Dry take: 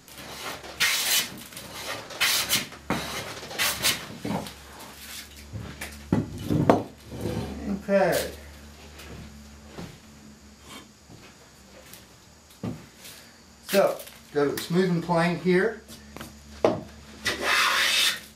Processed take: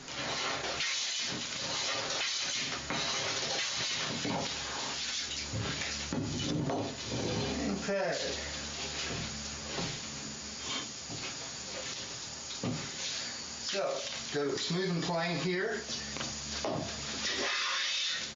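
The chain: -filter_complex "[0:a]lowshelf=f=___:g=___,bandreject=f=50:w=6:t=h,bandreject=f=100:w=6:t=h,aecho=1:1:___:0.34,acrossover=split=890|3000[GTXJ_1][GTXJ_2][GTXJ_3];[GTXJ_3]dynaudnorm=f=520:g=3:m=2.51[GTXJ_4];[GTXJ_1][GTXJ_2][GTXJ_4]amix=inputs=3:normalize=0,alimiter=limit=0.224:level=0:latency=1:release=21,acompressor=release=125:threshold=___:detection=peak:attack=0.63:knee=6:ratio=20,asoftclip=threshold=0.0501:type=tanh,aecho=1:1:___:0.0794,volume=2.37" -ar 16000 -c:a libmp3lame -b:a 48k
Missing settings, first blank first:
290, -5.5, 7.4, 0.0224, 210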